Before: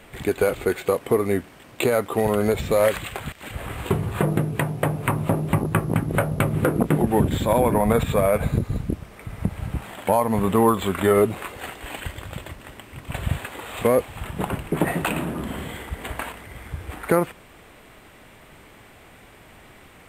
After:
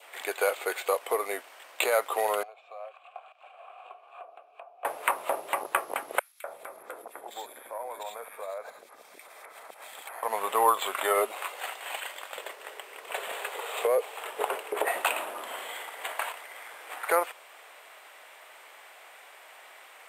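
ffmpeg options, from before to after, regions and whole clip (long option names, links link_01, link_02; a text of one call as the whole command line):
ffmpeg -i in.wav -filter_complex "[0:a]asettb=1/sr,asplit=3[link_01][link_02][link_03];[link_01]atrim=end=2.434[link_04];[link_02]atrim=start=2.43:end=4.85,asetpts=PTS-STARTPTS,afade=type=in:duration=0.004:curve=qsin,afade=type=out:start_time=2.416:duration=0.004:curve=qsin,acrossover=split=1300|7100[link_05][link_06][link_07];[link_05]acompressor=threshold=-30dB:ratio=4[link_08];[link_06]acompressor=threshold=-42dB:ratio=4[link_09];[link_07]acompressor=threshold=-54dB:ratio=4[link_10];[link_08][link_09][link_10]amix=inputs=3:normalize=0,asplit=3[link_11][link_12][link_13];[link_11]bandpass=frequency=730:width_type=q:width=8,volume=0dB[link_14];[link_12]bandpass=frequency=1090:width_type=q:width=8,volume=-6dB[link_15];[link_13]bandpass=frequency=2440:width_type=q:width=8,volume=-9dB[link_16];[link_14][link_15][link_16]amix=inputs=3:normalize=0[link_17];[link_03]atrim=start=4.846[link_18];[link_04][link_17]acrossfade=duration=0.004:curve1=hsin:curve2=qsin[link_19];[link_19][link_18]acrossfade=duration=0.004:curve1=qsin:curve2=hsin,asettb=1/sr,asplit=3[link_20][link_21][link_22];[link_20]atrim=end=6.194[link_23];[link_21]atrim=start=6.19:end=10.23,asetpts=PTS-STARTPTS,afade=type=in:duration=0.004:curve=qsin,afade=type=out:start_time=4.036:duration=0.004:curve=qsin,bandreject=frequency=2900:width=7.9,acompressor=threshold=-30dB:ratio=6:attack=3.2:release=140:knee=1:detection=peak,acrossover=split=2100[link_24][link_25];[link_24]adelay=250[link_26];[link_26][link_25]amix=inputs=2:normalize=0,atrim=end_sample=178164[link_27];[link_22]atrim=start=10.226[link_28];[link_23][link_27]acrossfade=duration=0.004:curve1=hsin:curve2=qsin[link_29];[link_29][link_28]acrossfade=duration=0.004:curve1=qsin:curve2=hsin,asettb=1/sr,asplit=3[link_30][link_31][link_32];[link_30]atrim=end=12.364[link_33];[link_31]atrim=start=12.36:end=14.88,asetpts=PTS-STARTPTS,afade=type=in:duration=0.004:curve=qsin,afade=type=out:start_time=2.516:duration=0.004:curve=qsin,equalizer=frequency=430:width_type=o:width=0.48:gain=13.5,acompressor=threshold=-14dB:ratio=6:attack=3.2:release=140:knee=1:detection=peak[link_34];[link_32]atrim=start=14.876[link_35];[link_33][link_34]acrossfade=duration=0.004:curve1=hsin:curve2=qsin[link_36];[link_36][link_35]acrossfade=duration=0.004:curve1=qsin:curve2=hsin,adynamicequalizer=threshold=0.00631:dfrequency=1700:dqfactor=2.7:tfrequency=1700:tqfactor=2.7:attack=5:release=100:ratio=0.375:range=2:mode=cutabove:tftype=bell,highpass=frequency=580:width=0.5412,highpass=frequency=580:width=1.3066" out.wav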